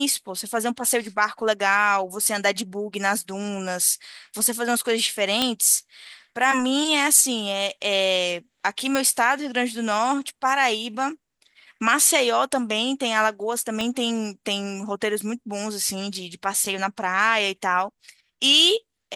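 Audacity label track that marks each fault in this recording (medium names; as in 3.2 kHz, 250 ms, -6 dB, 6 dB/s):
5.420000	5.420000	pop -6 dBFS
8.950000	8.950000	pop -8 dBFS
13.810000	13.810000	pop -13 dBFS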